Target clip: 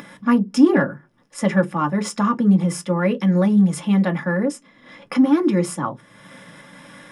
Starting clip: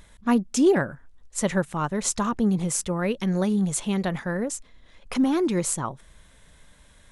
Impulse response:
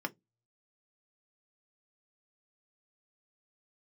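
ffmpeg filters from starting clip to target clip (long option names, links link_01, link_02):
-filter_complex "[0:a]acompressor=mode=upward:threshold=-30dB:ratio=2.5,aeval=exprs='0.355*(cos(1*acos(clip(val(0)/0.355,-1,1)))-cos(1*PI/2))+0.0158*(cos(5*acos(clip(val(0)/0.355,-1,1)))-cos(5*PI/2))':channel_layout=same[link_01];[1:a]atrim=start_sample=2205[link_02];[link_01][link_02]afir=irnorm=-1:irlink=0"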